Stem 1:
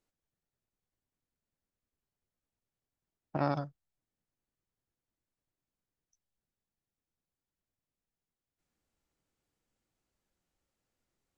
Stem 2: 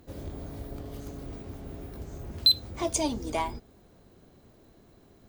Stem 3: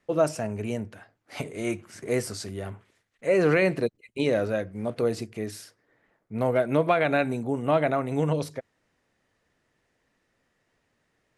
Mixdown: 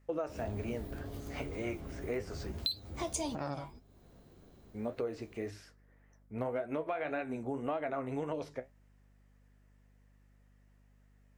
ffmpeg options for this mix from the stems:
ffmpeg -i stem1.wav -i stem2.wav -i stem3.wav -filter_complex "[0:a]highshelf=frequency=4900:gain=9.5,volume=-1dB,asplit=2[link_01][link_02];[1:a]adelay=200,volume=1dB[link_03];[2:a]acrossover=split=5100[link_04][link_05];[link_05]acompressor=threshold=-53dB:ratio=4:attack=1:release=60[link_06];[link_04][link_06]amix=inputs=2:normalize=0,equalizer=frequency=160:width_type=o:width=0.67:gain=-11,equalizer=frequency=4000:width_type=o:width=0.67:gain=-7,equalizer=frequency=10000:width_type=o:width=0.67:gain=-9,volume=0dB,asplit=3[link_07][link_08][link_09];[link_07]atrim=end=2.52,asetpts=PTS-STARTPTS,afade=type=out:start_time=2.516:duration=0.004:curve=hsin[link_10];[link_08]atrim=start=2.52:end=4.74,asetpts=PTS-STARTPTS,volume=0[link_11];[link_09]atrim=start=4.74,asetpts=PTS-STARTPTS,afade=type=in:duration=0.004:curve=hsin[link_12];[link_10][link_11][link_12]concat=n=3:v=0:a=1[link_13];[link_02]apad=whole_len=242046[link_14];[link_03][link_14]sidechaincompress=threshold=-46dB:ratio=12:attack=41:release=390[link_15];[link_01][link_15][link_13]amix=inputs=3:normalize=0,flanger=delay=9.4:depth=6.8:regen=54:speed=1.8:shape=triangular,aeval=exprs='val(0)+0.000708*(sin(2*PI*50*n/s)+sin(2*PI*2*50*n/s)/2+sin(2*PI*3*50*n/s)/3+sin(2*PI*4*50*n/s)/4+sin(2*PI*5*50*n/s)/5)':channel_layout=same,acompressor=threshold=-32dB:ratio=8" out.wav

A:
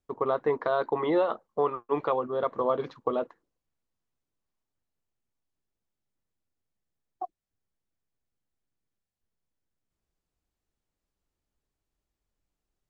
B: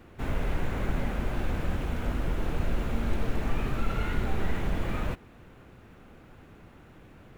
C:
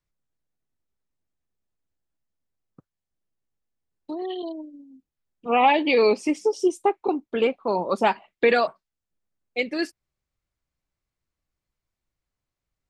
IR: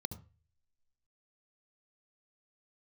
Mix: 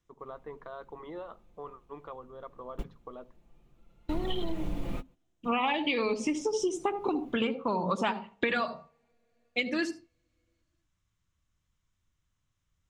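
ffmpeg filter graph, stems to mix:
-filter_complex "[0:a]volume=-15.5dB,asplit=2[link_01][link_02];[link_02]volume=-14dB[link_03];[1:a]equalizer=frequency=1600:width_type=o:width=0.83:gain=-11,aecho=1:1:5.8:0.52,volume=-4.5dB[link_04];[2:a]lowpass=6900,highshelf=frequency=2300:gain=7.5,volume=2.5dB,asplit=3[link_05][link_06][link_07];[link_06]volume=-6.5dB[link_08];[link_07]apad=whole_len=325697[link_09];[link_04][link_09]sidechaingate=range=-30dB:threshold=-48dB:ratio=16:detection=peak[link_10];[3:a]atrim=start_sample=2205[link_11];[link_03][link_08]amix=inputs=2:normalize=0[link_12];[link_12][link_11]afir=irnorm=-1:irlink=0[link_13];[link_01][link_10][link_05][link_13]amix=inputs=4:normalize=0,acompressor=threshold=-26dB:ratio=6"

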